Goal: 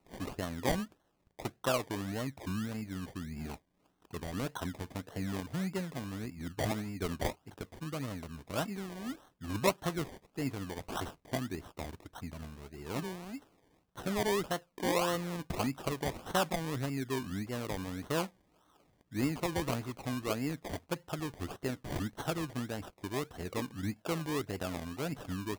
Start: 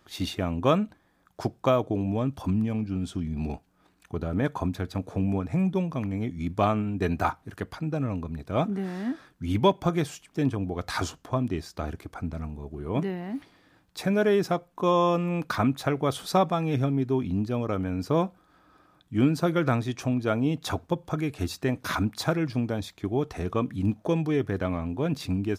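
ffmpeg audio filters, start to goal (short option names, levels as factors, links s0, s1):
-af "lowshelf=f=370:g=-4.5,acrusher=samples=26:mix=1:aa=0.000001:lfo=1:lforange=15.6:lforate=1.7,volume=0.447"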